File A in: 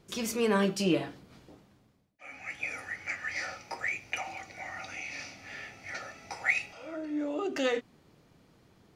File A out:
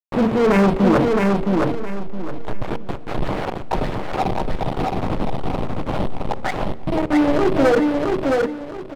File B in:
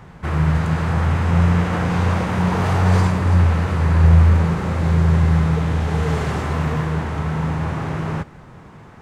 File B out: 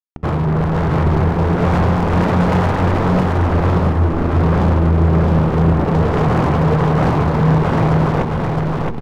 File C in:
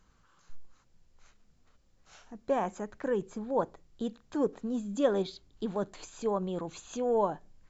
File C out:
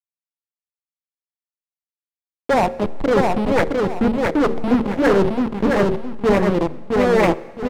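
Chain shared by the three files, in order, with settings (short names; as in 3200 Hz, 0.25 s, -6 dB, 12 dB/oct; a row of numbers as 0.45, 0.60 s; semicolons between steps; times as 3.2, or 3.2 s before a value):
level-crossing sampler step -31 dBFS; LPF 1100 Hz 24 dB/oct; bell 64 Hz -6 dB 0.79 oct; reverse; compressor 12:1, threshold -27 dBFS; reverse; crossover distortion -45.5 dBFS; de-hum 76.49 Hz, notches 7; sine folder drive 11 dB, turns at -19 dBFS; feedback echo 0.666 s, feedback 28%, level -3 dB; plate-style reverb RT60 1.6 s, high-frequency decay 0.95×, DRR 18.5 dB; normalise peaks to -6 dBFS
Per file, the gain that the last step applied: +8.0, +6.5, +7.5 dB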